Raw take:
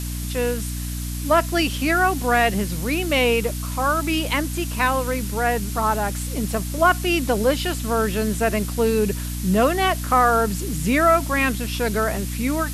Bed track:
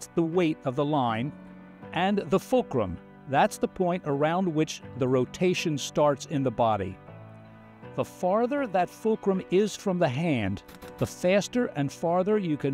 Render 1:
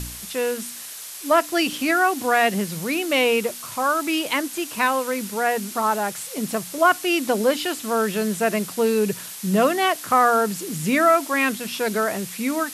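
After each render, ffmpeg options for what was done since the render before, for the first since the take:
ffmpeg -i in.wav -af "bandreject=frequency=60:width_type=h:width=4,bandreject=frequency=120:width_type=h:width=4,bandreject=frequency=180:width_type=h:width=4,bandreject=frequency=240:width_type=h:width=4,bandreject=frequency=300:width_type=h:width=4" out.wav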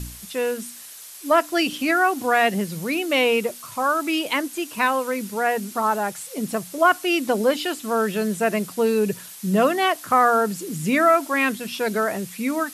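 ffmpeg -i in.wav -af "afftdn=noise_reduction=6:noise_floor=-36" out.wav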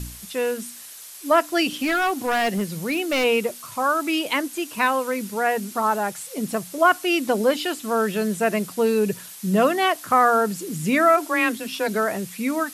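ffmpeg -i in.wav -filter_complex "[0:a]asplit=3[link_01][link_02][link_03];[link_01]afade=type=out:start_time=1.69:duration=0.02[link_04];[link_02]volume=18dB,asoftclip=hard,volume=-18dB,afade=type=in:start_time=1.69:duration=0.02,afade=type=out:start_time=3.23:duration=0.02[link_05];[link_03]afade=type=in:start_time=3.23:duration=0.02[link_06];[link_04][link_05][link_06]amix=inputs=3:normalize=0,asplit=3[link_07][link_08][link_09];[link_07]afade=type=out:start_time=11.16:duration=0.02[link_10];[link_08]afreqshift=21,afade=type=in:start_time=11.16:duration=0.02,afade=type=out:start_time=11.87:duration=0.02[link_11];[link_09]afade=type=in:start_time=11.87:duration=0.02[link_12];[link_10][link_11][link_12]amix=inputs=3:normalize=0" out.wav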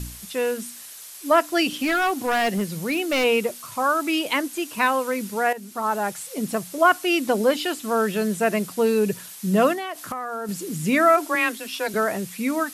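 ffmpeg -i in.wav -filter_complex "[0:a]asettb=1/sr,asplit=3[link_01][link_02][link_03];[link_01]atrim=end=9.734[link_04];[link_02]atrim=start=9.73:end=10.49,asetpts=PTS-STARTPTS,afade=type=in:duration=0.004:curve=qsin,afade=type=out:start_time=0.756:duration=0.004:curve=qsin,acompressor=threshold=-26dB:ratio=10:attack=3.2:release=140:knee=1:detection=peak[link_05];[link_03]atrim=start=10.486[link_06];[link_04][link_05]acrossfade=duration=0.004:curve1=hsin:curve2=qsin[link_07];[link_07][link_06]acrossfade=duration=0.004:curve1=qsin:curve2=hsin,asettb=1/sr,asplit=3[link_08][link_09][link_10];[link_08]atrim=end=11.354[link_11];[link_09]atrim=start=11.35:end=11.94,asetpts=PTS-STARTPTS,afade=type=in:duration=0.004:curve=qsin,afade=type=out:start_time=0.586:duration=0.004:curve=qsin,highpass=frequency=490:poles=1[link_12];[link_10]atrim=start=11.936[link_13];[link_11][link_12]acrossfade=duration=0.004:curve1=hsin:curve2=qsin[link_14];[link_14][link_13]acrossfade=duration=0.004:curve1=qsin:curve2=hsin,asplit=2[link_15][link_16];[link_15]atrim=end=5.53,asetpts=PTS-STARTPTS,afade=type=out:start_time=5.526:duration=0.004:curve=hsin:silence=0.223872[link_17];[link_16]atrim=start=5.53,asetpts=PTS-STARTPTS,afade=type=in:duration=0.54:silence=0.223872[link_18];[link_17][link_18]concat=n=2:v=0:a=1" out.wav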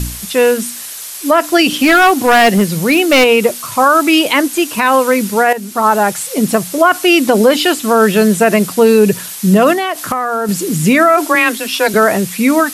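ffmpeg -i in.wav -af "alimiter=level_in=13.5dB:limit=-1dB:release=50:level=0:latency=1" out.wav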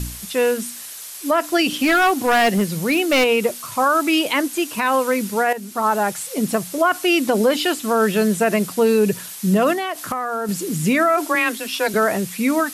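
ffmpeg -i in.wav -af "volume=-7.5dB" out.wav

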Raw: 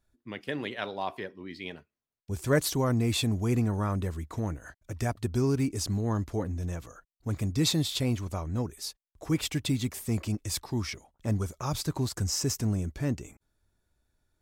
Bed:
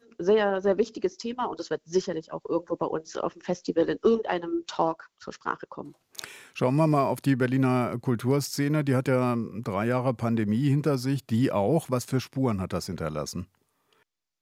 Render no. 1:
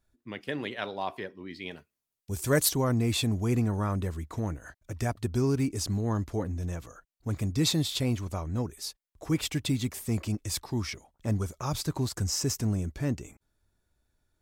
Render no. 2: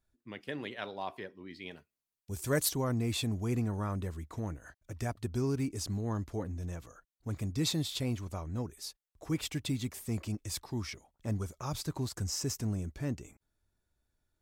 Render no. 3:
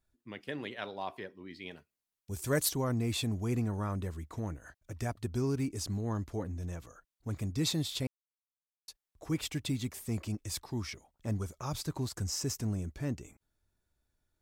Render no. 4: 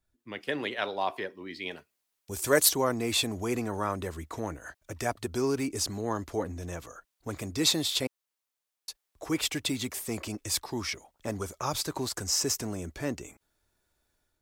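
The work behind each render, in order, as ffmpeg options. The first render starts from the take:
ffmpeg -i in.wav -filter_complex "[0:a]asettb=1/sr,asplit=3[link_01][link_02][link_03];[link_01]atrim=end=1.714[link_04];[link_02]atrim=start=1.71:end=2.69,asetpts=PTS-STARTPTS,afade=type=in:duration=0.004:curve=qsin,afade=type=out:start_time=0.976:duration=0.004:curve=qsin,aemphasis=mode=production:type=cd[link_05];[link_03]atrim=start=2.686[link_06];[link_04][link_05]acrossfade=duration=0.004:curve1=hsin:curve2=qsin[link_07];[link_07][link_06]acrossfade=duration=0.004:curve1=qsin:curve2=hsin" out.wav
ffmpeg -i in.wav -af "volume=-5.5dB" out.wav
ffmpeg -i in.wav -filter_complex "[0:a]asplit=3[link_01][link_02][link_03];[link_01]atrim=end=8.07,asetpts=PTS-STARTPTS,afade=type=out:start_time=8.066:duration=0.004:curve=hsin[link_04];[link_02]atrim=start=8.07:end=8.88,asetpts=PTS-STARTPTS,volume=0[link_05];[link_03]atrim=start=8.88,asetpts=PTS-STARTPTS,afade=type=in:duration=0.004:curve=hsin[link_06];[link_04][link_05][link_06]concat=n=3:v=0:a=1" out.wav
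ffmpeg -i in.wav -filter_complex "[0:a]acrossover=split=300[link_01][link_02];[link_01]alimiter=level_in=11dB:limit=-24dB:level=0:latency=1,volume=-11dB[link_03];[link_02]dynaudnorm=framelen=120:gausssize=5:maxgain=9dB[link_04];[link_03][link_04]amix=inputs=2:normalize=0" out.wav

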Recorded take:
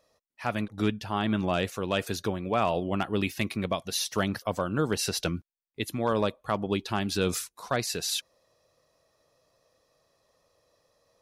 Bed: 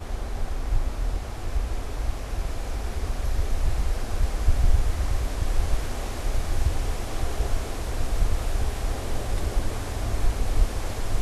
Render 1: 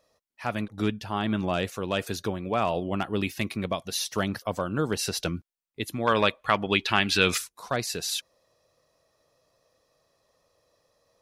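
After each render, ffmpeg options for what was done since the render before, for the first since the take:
ffmpeg -i in.wav -filter_complex "[0:a]asettb=1/sr,asplit=3[link_01][link_02][link_03];[link_01]atrim=end=6.074[link_04];[link_02]atrim=start=6.07:end=7.38,asetpts=PTS-STARTPTS,afade=type=in:duration=0.004:curve=qsin,afade=type=out:start_time=1.306:duration=0.004:curve=qsin,equalizer=frequency=2300:width=0.67:gain=14.5[link_05];[link_03]atrim=start=7.376[link_06];[link_04][link_05]acrossfade=duration=0.004:curve1=hsin:curve2=qsin[link_07];[link_07][link_06]acrossfade=duration=0.004:curve1=qsin:curve2=hsin" out.wav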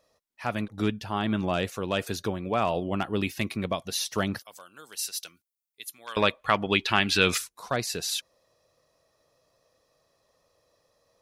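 ffmpeg -i in.wav -filter_complex "[0:a]asettb=1/sr,asplit=3[link_01][link_02][link_03];[link_01]atrim=end=4.424[link_04];[link_02]atrim=start=4.42:end=6.17,asetpts=PTS-STARTPTS,afade=type=in:duration=0.004:curve=qsin,afade=type=out:start_time=1.746:duration=0.004:curve=qsin,aderivative[link_05];[link_03]atrim=start=6.166[link_06];[link_04][link_05]acrossfade=duration=0.004:curve1=hsin:curve2=qsin[link_07];[link_07][link_06]acrossfade=duration=0.004:curve1=qsin:curve2=hsin" out.wav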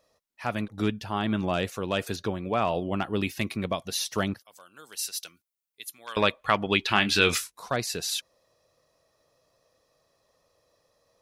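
ffmpeg -i in.wav -filter_complex "[0:a]asettb=1/sr,asplit=3[link_01][link_02][link_03];[link_01]atrim=end=2.164[link_04];[link_02]atrim=start=2.16:end=3.03,asetpts=PTS-STARTPTS,afade=type=in:duration=0.004:curve=qsin,afade=type=out:start_time=0.866:duration=0.004:curve=qsin,acrossover=split=5800[link_05][link_06];[link_06]acompressor=threshold=-58dB:ratio=4:attack=1:release=60[link_07];[link_05][link_07]amix=inputs=2:normalize=0[link_08];[link_03]atrim=start=3.026[link_09];[link_04][link_08]acrossfade=duration=0.004:curve1=hsin:curve2=qsin[link_10];[link_10][link_09]acrossfade=duration=0.004:curve1=qsin:curve2=hsin,asettb=1/sr,asplit=3[link_11][link_12][link_13];[link_11]atrim=end=6.884[link_14];[link_12]atrim=start=6.88:end=7.64,asetpts=PTS-STARTPTS,afade=type=in:duration=0.004:curve=qsin,afade=type=out:start_time=0.756:duration=0.004:curve=qsin,asplit=2[link_15][link_16];[link_16]adelay=24,volume=-9dB[link_17];[link_15][link_17]amix=inputs=2:normalize=0,atrim=end_sample=33516[link_18];[link_13]atrim=start=7.636[link_19];[link_14][link_18]acrossfade=duration=0.004:curve1=hsin:curve2=qsin[link_20];[link_20][link_19]acrossfade=duration=0.004:curve1=qsin:curve2=hsin,asplit=2[link_21][link_22];[link_21]atrim=end=4.34,asetpts=PTS-STARTPTS,afade=type=out:start_time=4.336:duration=0.004:curve=hsin:silence=0.177828[link_23];[link_22]atrim=start=4.34,asetpts=PTS-STARTPTS,afade=type=in:duration=0.68:curve=qsin:silence=0.177828[link_24];[link_23][link_24]concat=n=2:v=0:a=1" out.wav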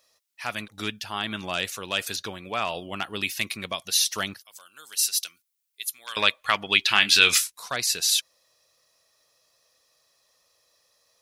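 ffmpeg -i in.wav -af "tiltshelf=frequency=1200:gain=-9.5" out.wav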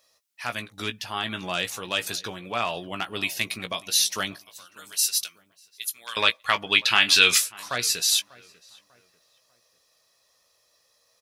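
ffmpeg -i in.wav -filter_complex "[0:a]asplit=2[link_01][link_02];[link_02]adelay=17,volume=-8.5dB[link_03];[link_01][link_03]amix=inputs=2:normalize=0,asplit=2[link_04][link_05];[link_05]adelay=594,lowpass=frequency=1800:poles=1,volume=-21dB,asplit=2[link_06][link_07];[link_07]adelay=594,lowpass=frequency=1800:poles=1,volume=0.38,asplit=2[link_08][link_09];[link_09]adelay=594,lowpass=frequency=1800:poles=1,volume=0.38[link_10];[link_04][link_06][link_08][link_10]amix=inputs=4:normalize=0" out.wav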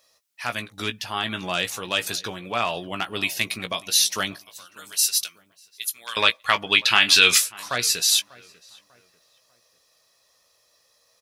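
ffmpeg -i in.wav -af "volume=2.5dB,alimiter=limit=-1dB:level=0:latency=1" out.wav

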